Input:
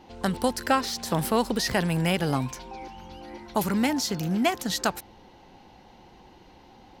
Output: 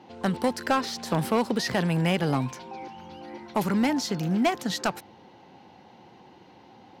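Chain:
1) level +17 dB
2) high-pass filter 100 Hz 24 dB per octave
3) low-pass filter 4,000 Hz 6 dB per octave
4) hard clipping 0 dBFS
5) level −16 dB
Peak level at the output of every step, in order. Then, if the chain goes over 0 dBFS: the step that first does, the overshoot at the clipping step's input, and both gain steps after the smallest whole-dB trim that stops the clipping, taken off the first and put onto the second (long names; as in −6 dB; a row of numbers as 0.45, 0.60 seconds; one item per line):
+7.0, +8.0, +7.5, 0.0, −16.0 dBFS
step 1, 7.5 dB
step 1 +9 dB, step 5 −8 dB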